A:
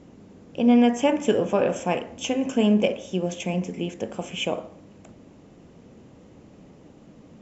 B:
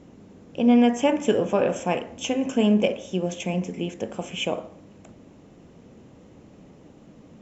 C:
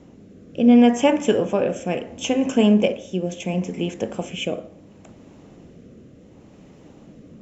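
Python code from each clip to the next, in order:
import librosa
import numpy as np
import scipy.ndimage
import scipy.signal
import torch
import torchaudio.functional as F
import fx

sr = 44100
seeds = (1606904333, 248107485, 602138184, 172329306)

y1 = fx.notch(x, sr, hz=4700.0, q=26.0)
y2 = fx.rotary(y1, sr, hz=0.7)
y2 = y2 * 10.0 ** (4.5 / 20.0)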